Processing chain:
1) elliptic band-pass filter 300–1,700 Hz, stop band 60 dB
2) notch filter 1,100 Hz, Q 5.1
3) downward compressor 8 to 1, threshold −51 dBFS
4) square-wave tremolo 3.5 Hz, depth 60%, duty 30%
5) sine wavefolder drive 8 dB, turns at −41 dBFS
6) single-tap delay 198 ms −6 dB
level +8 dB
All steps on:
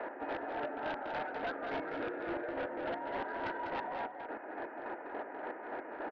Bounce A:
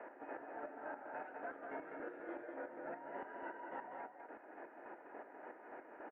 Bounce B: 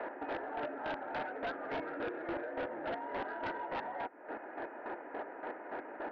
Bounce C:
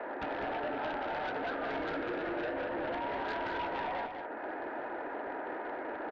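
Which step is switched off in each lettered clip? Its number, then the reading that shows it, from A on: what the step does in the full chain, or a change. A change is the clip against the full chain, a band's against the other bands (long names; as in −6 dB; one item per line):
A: 5, distortion level −10 dB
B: 6, change in crest factor −2.5 dB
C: 4, change in momentary loudness spread −1 LU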